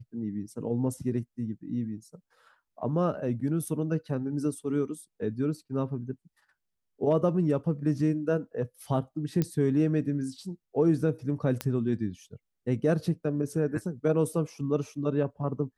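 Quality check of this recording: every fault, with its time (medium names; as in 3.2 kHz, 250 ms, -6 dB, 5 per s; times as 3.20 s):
9.42 s: pop -15 dBFS
11.61 s: pop -14 dBFS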